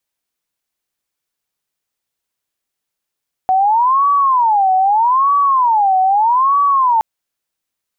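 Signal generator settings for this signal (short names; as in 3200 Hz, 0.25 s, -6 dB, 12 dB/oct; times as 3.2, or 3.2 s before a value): siren wail 750–1140 Hz 0.8/s sine -9.5 dBFS 3.52 s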